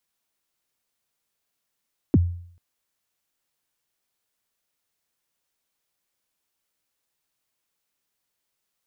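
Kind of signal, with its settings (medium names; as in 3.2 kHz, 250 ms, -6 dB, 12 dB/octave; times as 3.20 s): kick drum length 0.44 s, from 370 Hz, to 87 Hz, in 33 ms, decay 0.59 s, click off, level -10.5 dB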